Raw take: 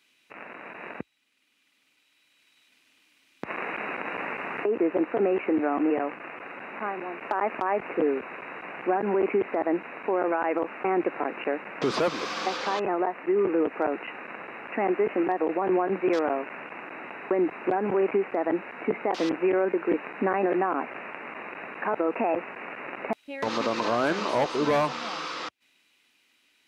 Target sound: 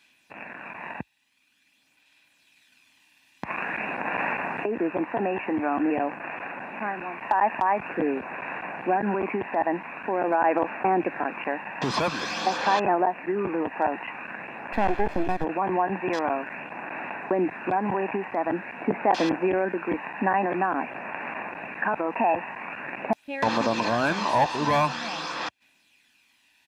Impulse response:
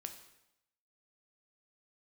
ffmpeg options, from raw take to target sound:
-filter_complex "[0:a]asplit=3[link_01][link_02][link_03];[link_01]afade=type=out:start_time=14.72:duration=0.02[link_04];[link_02]aeval=exprs='if(lt(val(0),0),0.251*val(0),val(0))':channel_layout=same,afade=type=in:start_time=14.72:duration=0.02,afade=type=out:start_time=15.43:duration=0.02[link_05];[link_03]afade=type=in:start_time=15.43:duration=0.02[link_06];[link_04][link_05][link_06]amix=inputs=3:normalize=0,aphaser=in_gain=1:out_gain=1:delay=1.1:decay=0.33:speed=0.47:type=sinusoidal,aecho=1:1:1.2:0.49,volume=1.5dB"

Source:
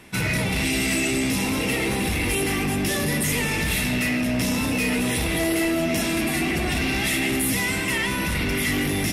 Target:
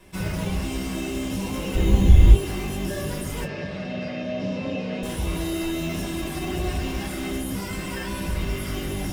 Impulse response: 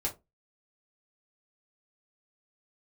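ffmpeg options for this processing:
-filter_complex "[0:a]asettb=1/sr,asplit=3[link_01][link_02][link_03];[link_01]atrim=end=1.754[link_04];[link_02]atrim=start=1.75:end=2.35,asetpts=PTS-STARTPTS,afade=type=in:duration=0.004:curve=qsin,afade=type=out:start_time=0.596:duration=0.004:curve=qsin,aemphasis=mode=reproduction:type=riaa[link_05];[link_03]atrim=start=2.346[link_06];[link_04][link_05]acrossfade=duration=0.004:curve1=hsin:curve2=qsin[link_07];[link_07][link_06]acrossfade=duration=0.004:curve1=qsin:curve2=hsin,acrossover=split=1800[link_08][link_09];[link_08]acrusher=samples=13:mix=1:aa=0.000001[link_10];[link_09]alimiter=level_in=1dB:limit=-24dB:level=0:latency=1,volume=-1dB[link_11];[link_10][link_11]amix=inputs=2:normalize=0,asettb=1/sr,asplit=3[link_12][link_13][link_14];[link_12]atrim=end=3.444[link_15];[link_13]atrim=start=3.44:end=5.03,asetpts=PTS-STARTPTS,afade=type=in:duration=0.004:curve=qsin,afade=type=out:start_time=1.586:duration=0.004:curve=qsin,highpass=frequency=110:width=0.5412,highpass=frequency=110:width=1.3066,equalizer=frequency=350:width_type=q:width=4:gain=-4,equalizer=frequency=560:width_type=q:width=4:gain=9,equalizer=frequency=940:width_type=q:width=4:gain=-7,equalizer=frequency=1400:width_type=q:width=4:gain=-4,equalizer=frequency=3400:width_type=q:width=4:gain=-5,lowpass=frequency=4600:width=0.5412,lowpass=frequency=4600:width=1.3066[link_16];[link_14]atrim=start=5.026[link_17];[link_15][link_16]acrossfade=duration=0.004:curve1=hsin:curve2=qsin[link_18];[link_18][link_17]acrossfade=duration=0.004:curve1=qsin:curve2=hsin[link_19];[1:a]atrim=start_sample=2205,asetrate=57330,aresample=44100[link_20];[link_19][link_20]afir=irnorm=-1:irlink=0,volume=-6dB"

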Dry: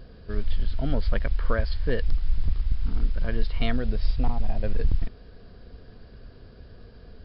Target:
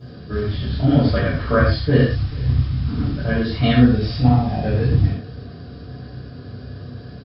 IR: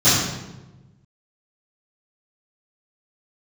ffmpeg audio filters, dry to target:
-filter_complex "[0:a]highpass=frequency=110:poles=1,aecho=1:1:437:0.0708[link_01];[1:a]atrim=start_sample=2205,afade=type=out:start_time=0.2:duration=0.01,atrim=end_sample=9261[link_02];[link_01][link_02]afir=irnorm=-1:irlink=0,volume=-11dB"

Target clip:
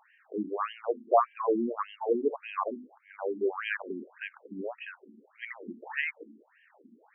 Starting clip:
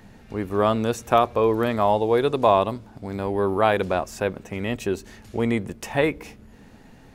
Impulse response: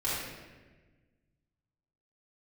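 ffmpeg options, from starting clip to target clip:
-af "bandreject=frequency=50:width_type=h:width=6,bandreject=frequency=100:width_type=h:width=6,bandreject=frequency=150:width_type=h:width=6,bandreject=frequency=200:width_type=h:width=6,bandreject=frequency=250:width_type=h:width=6,bandreject=frequency=300:width_type=h:width=6,afftfilt=real='re*between(b*sr/1024,250*pow(2300/250,0.5+0.5*sin(2*PI*1.7*pts/sr))/1.41,250*pow(2300/250,0.5+0.5*sin(2*PI*1.7*pts/sr))*1.41)':imag='im*between(b*sr/1024,250*pow(2300/250,0.5+0.5*sin(2*PI*1.7*pts/sr))/1.41,250*pow(2300/250,0.5+0.5*sin(2*PI*1.7*pts/sr))*1.41)':win_size=1024:overlap=0.75,volume=-2dB"

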